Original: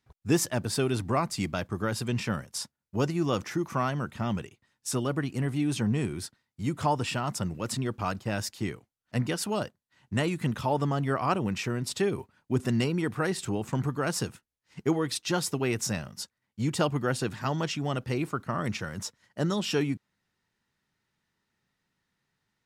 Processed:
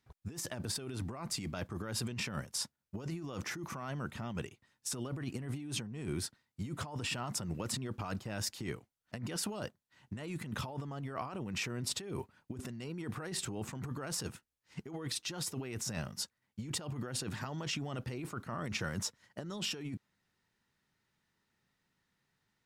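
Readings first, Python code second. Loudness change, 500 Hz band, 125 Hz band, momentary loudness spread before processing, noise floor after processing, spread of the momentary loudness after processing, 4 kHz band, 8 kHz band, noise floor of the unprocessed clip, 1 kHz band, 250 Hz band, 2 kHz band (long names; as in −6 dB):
−9.5 dB, −13.5 dB, −10.0 dB, 8 LU, −84 dBFS, 8 LU, −4.0 dB, −4.0 dB, −84 dBFS, −13.0 dB, −11.5 dB, −8.0 dB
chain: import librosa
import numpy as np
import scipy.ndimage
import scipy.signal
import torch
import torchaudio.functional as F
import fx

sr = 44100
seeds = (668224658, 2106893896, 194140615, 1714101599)

y = fx.over_compress(x, sr, threshold_db=-34.0, ratio=-1.0)
y = y * librosa.db_to_amplitude(-5.5)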